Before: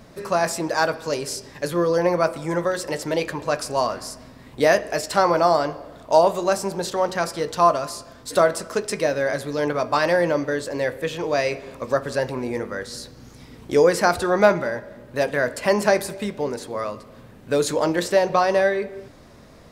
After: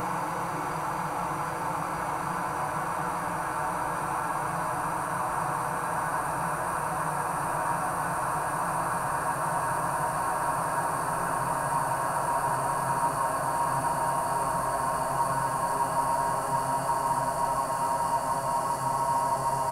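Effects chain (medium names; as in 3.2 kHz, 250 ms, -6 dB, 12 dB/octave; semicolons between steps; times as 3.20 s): random holes in the spectrogram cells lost 39%; delay 1071 ms -9 dB; Paulstretch 33×, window 1.00 s, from 3.27 s; in parallel at -4.5 dB: saturation -27.5 dBFS, distortion -10 dB; on the sum: FFT filter 120 Hz 0 dB, 580 Hz -15 dB, 850 Hz +4 dB, 4.3 kHz -15 dB, 10 kHz +2 dB; trim -1.5 dB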